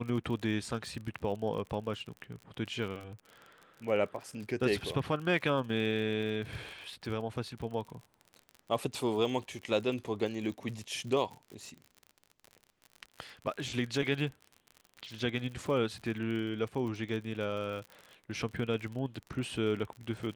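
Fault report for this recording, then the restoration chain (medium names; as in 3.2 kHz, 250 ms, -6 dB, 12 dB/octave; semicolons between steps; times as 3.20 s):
crackle 51 per s -39 dBFS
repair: de-click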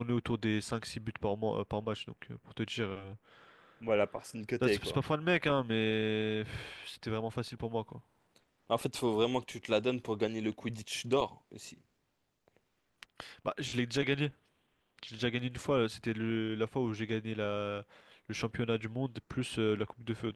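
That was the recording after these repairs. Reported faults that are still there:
nothing left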